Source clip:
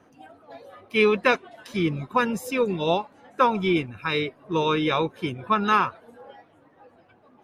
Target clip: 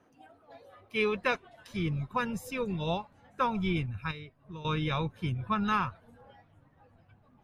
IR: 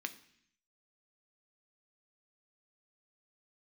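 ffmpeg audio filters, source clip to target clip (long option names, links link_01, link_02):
-filter_complex "[0:a]asettb=1/sr,asplit=3[link_01][link_02][link_03];[link_01]atrim=end=4.114[link_04];[link_02]atrim=start=4.11:end=4.65,asetpts=PTS-STARTPTS,afade=type=in:duration=0.004:curve=qsin,afade=type=out:start_time=0.536:duration=0.004:curve=qsin,acompressor=threshold=-44dB:ratio=2[link_05];[link_03]atrim=start=4.646[link_06];[link_04][link_05]acrossfade=duration=0.004:curve1=hsin:curve2=qsin[link_07];[link_07][link_06]acrossfade=duration=0.004:curve1=qsin:curve2=hsin,asubboost=boost=11.5:cutoff=110,volume=-8dB"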